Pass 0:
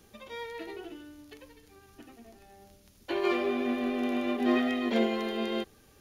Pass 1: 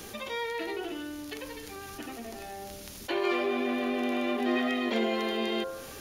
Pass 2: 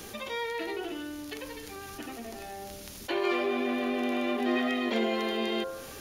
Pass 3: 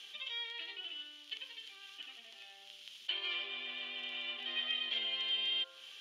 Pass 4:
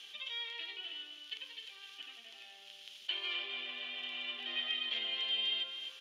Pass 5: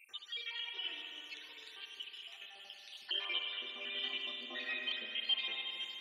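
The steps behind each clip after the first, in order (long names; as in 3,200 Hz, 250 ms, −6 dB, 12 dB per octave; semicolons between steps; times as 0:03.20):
low-shelf EQ 240 Hz −8 dB; hum removal 48.08 Hz, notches 35; envelope flattener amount 50%
no processing that can be heard
resonant band-pass 3,100 Hz, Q 7; level +6.5 dB
single-tap delay 259 ms −9.5 dB
time-frequency cells dropped at random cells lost 69%; spring reverb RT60 3.2 s, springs 50 ms, chirp 60 ms, DRR 1 dB; level +3.5 dB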